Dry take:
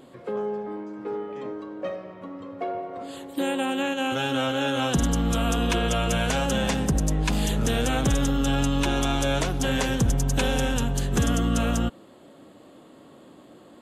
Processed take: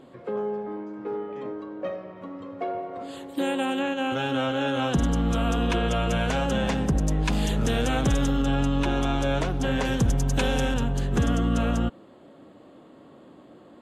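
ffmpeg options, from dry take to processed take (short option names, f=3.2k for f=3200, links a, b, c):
-af "asetnsamples=n=441:p=0,asendcmd='2.16 lowpass f 6500;3.79 lowpass f 2700;7.08 lowpass f 4800;8.42 lowpass f 2100;9.85 lowpass f 5400;10.74 lowpass f 2400',lowpass=f=3k:p=1"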